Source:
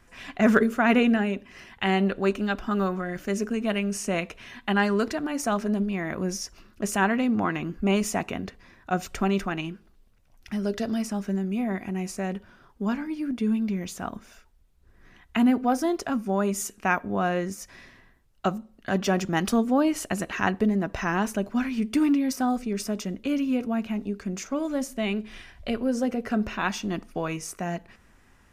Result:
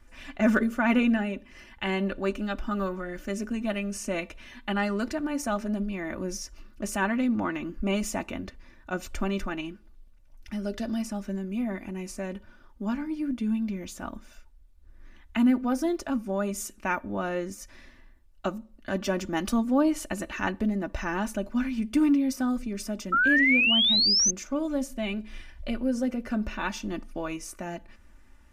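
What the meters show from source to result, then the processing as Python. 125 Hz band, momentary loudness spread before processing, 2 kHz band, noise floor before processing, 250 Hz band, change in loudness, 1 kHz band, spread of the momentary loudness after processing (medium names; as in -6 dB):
-5.0 dB, 10 LU, +1.5 dB, -58 dBFS, -2.0 dB, -1.0 dB, -4.5 dB, 15 LU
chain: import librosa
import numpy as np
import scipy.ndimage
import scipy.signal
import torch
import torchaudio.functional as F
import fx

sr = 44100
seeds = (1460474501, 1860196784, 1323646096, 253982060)

y = fx.low_shelf(x, sr, hz=76.0, db=10.0)
y = y + 0.63 * np.pad(y, (int(3.4 * sr / 1000.0), 0))[:len(y)]
y = fx.spec_paint(y, sr, seeds[0], shape='rise', start_s=23.12, length_s=1.19, low_hz=1300.0, high_hz=6400.0, level_db=-17.0)
y = F.gain(torch.from_numpy(y), -5.0).numpy()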